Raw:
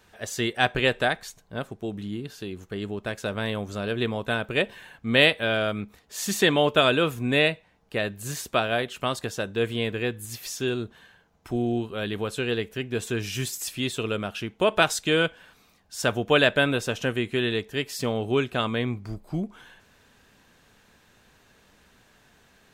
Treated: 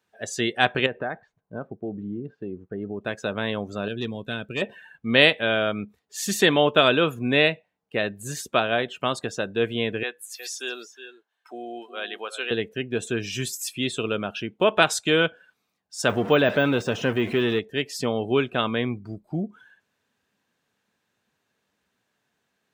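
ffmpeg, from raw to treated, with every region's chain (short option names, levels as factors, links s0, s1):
-filter_complex "[0:a]asettb=1/sr,asplit=3[s0][s1][s2];[s0]atrim=end=0.864[s3];[s1]atrim=start=0.86:end=3.01,asetpts=PTS-STARTPTS,afade=t=in:d=0.004:c=qsin,afade=t=out:st=2.146:d=0.004:c=qsin,lowpass=1600,acompressor=threshold=0.0398:ratio=3:attack=3.2:release=140:knee=1:detection=peak[s4];[s2]atrim=start=3.006[s5];[s3][s4]acrossfade=d=0.004:c1=hsin:c2=qsin[s6];[s6][s5]acrossfade=d=0.004:c1=qsin:c2=hsin,asettb=1/sr,asplit=3[s7][s8][s9];[s7]atrim=end=3.884[s10];[s8]atrim=start=3.88:end=4.62,asetpts=PTS-STARTPTS,afade=t=in:d=0.004:c=qsin,afade=t=out:st=0.736:d=0.004:c=qsin,equalizer=f=850:t=o:w=2.6:g=-10,asoftclip=type=hard:threshold=0.0794[s11];[s9]atrim=start=4.616[s12];[s10][s11]acrossfade=d=0.004:c1=hsin:c2=qsin[s13];[s13][s12]acrossfade=d=0.004:c1=qsin:c2=hsin,asettb=1/sr,asplit=3[s14][s15][s16];[s14]atrim=end=10.034[s17];[s15]atrim=start=10.03:end=12.51,asetpts=PTS-STARTPTS,afade=t=in:d=0.004:c=qsin,afade=t=out:st=2.476:d=0.004:c=qsin,highpass=700,aecho=1:1:362:0.316,atrim=end_sample=109368[s18];[s16]atrim=start=12.506[s19];[s17][s18]acrossfade=d=0.004:c1=hsin:c2=qsin[s20];[s20][s19]acrossfade=d=0.004:c1=qsin:c2=hsin,asettb=1/sr,asplit=3[s21][s22][s23];[s21]atrim=end=16.094[s24];[s22]atrim=start=16.09:end=17.59,asetpts=PTS-STARTPTS,afade=t=in:d=0.004:c=qsin,afade=t=out:st=1.496:d=0.004:c=qsin,aeval=exprs='val(0)+0.5*0.0398*sgn(val(0))':c=same,deesser=0.65[s25];[s23]atrim=start=17.586[s26];[s24][s25]acrossfade=d=0.004:c1=hsin:c2=qsin[s27];[s27][s26]acrossfade=d=0.004:c1=qsin:c2=hsin,afftdn=nr=18:nf=-42,highpass=130,volume=1.26"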